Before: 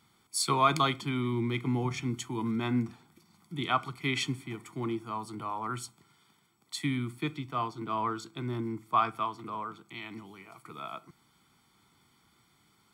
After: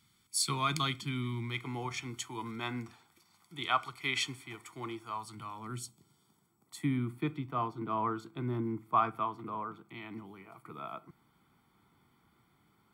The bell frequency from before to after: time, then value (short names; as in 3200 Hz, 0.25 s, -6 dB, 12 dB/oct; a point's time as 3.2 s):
bell -13 dB 2.2 oct
1.21 s 620 Hz
1.68 s 190 Hz
5.07 s 190 Hz
5.83 s 1300 Hz
7.11 s 6100 Hz